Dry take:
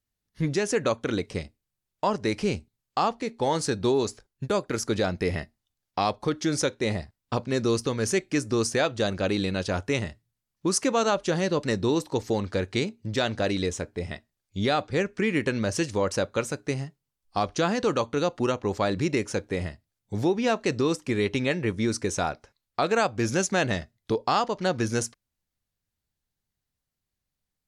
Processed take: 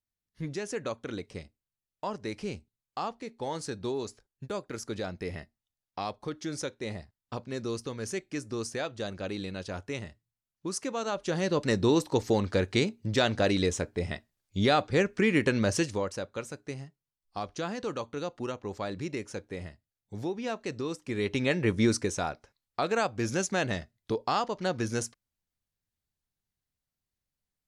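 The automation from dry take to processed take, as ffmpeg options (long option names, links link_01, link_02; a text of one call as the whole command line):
ffmpeg -i in.wav -af "volume=12dB,afade=type=in:start_time=11.05:duration=0.78:silence=0.316228,afade=type=out:start_time=15.7:duration=0.42:silence=0.316228,afade=type=in:start_time=21.01:duration=0.84:silence=0.266073,afade=type=out:start_time=21.85:duration=0.29:silence=0.473151" out.wav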